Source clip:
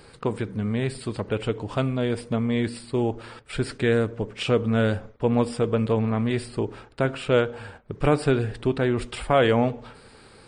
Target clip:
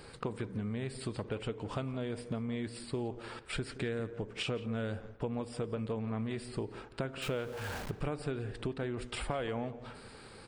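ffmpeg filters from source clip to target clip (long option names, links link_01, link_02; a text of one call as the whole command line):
ffmpeg -i in.wav -filter_complex "[0:a]asettb=1/sr,asplit=3[link_01][link_02][link_03];[link_01]atrim=end=7.224[link_04];[link_02]atrim=start=7.22:end=7.91,asetpts=PTS-STARTPTS,afade=type=in:duration=0.004:curve=qsin,afade=type=out:start_time=0.686:duration=0.004:curve=qsin,aeval=exprs='val(0)+0.5*0.0211*sgn(val(0))':channel_layout=same[link_05];[link_03]atrim=start=7.906[link_06];[link_04][link_05]acrossfade=duration=0.004:curve1=hsin:curve2=qsin[link_07];[link_07][link_06]acrossfade=duration=0.004:curve1=qsin:curve2=hsin,acompressor=threshold=-32dB:ratio=6,asplit=2[link_08][link_09];[link_09]adelay=172,lowpass=frequency=2800:poles=1,volume=-15dB,asplit=2[link_10][link_11];[link_11]adelay=172,lowpass=frequency=2800:poles=1,volume=0.28,asplit=2[link_12][link_13];[link_13]adelay=172,lowpass=frequency=2800:poles=1,volume=0.28[link_14];[link_10][link_12][link_14]amix=inputs=3:normalize=0[link_15];[link_08][link_15]amix=inputs=2:normalize=0,volume=-2dB" out.wav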